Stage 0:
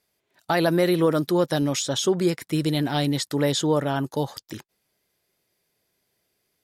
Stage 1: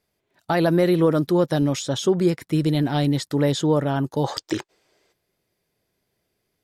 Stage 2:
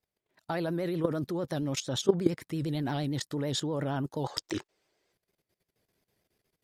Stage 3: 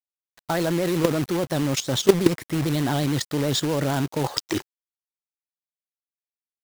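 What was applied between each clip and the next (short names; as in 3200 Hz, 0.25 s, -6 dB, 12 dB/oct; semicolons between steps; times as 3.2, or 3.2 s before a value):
spectral gain 4.24–5.12, 280–8800 Hz +12 dB; tilt -1.5 dB/oct
vibrato 8.7 Hz 83 cents; level quantiser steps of 15 dB; gain -1 dB
companded quantiser 4-bit; gain +7.5 dB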